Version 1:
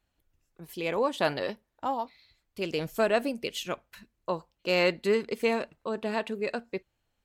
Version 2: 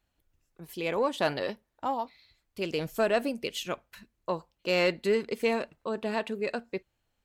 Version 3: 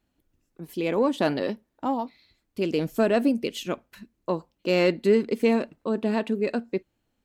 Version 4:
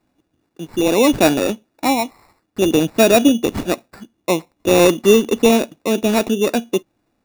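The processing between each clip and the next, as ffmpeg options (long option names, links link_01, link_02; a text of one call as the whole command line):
ffmpeg -i in.wav -af "asoftclip=type=tanh:threshold=-13.5dB" out.wav
ffmpeg -i in.wav -af "equalizer=frequency=260:width_type=o:width=1.4:gain=11.5" out.wav
ffmpeg -i in.wav -af "highpass=110,equalizer=frequency=320:width_type=q:width=4:gain=5,equalizer=frequency=720:width_type=q:width=4:gain=5,equalizer=frequency=3100:width_type=q:width=4:gain=8,lowpass=frequency=7600:width=0.5412,lowpass=frequency=7600:width=1.3066,acrusher=samples=14:mix=1:aa=0.000001,volume=7.5dB" out.wav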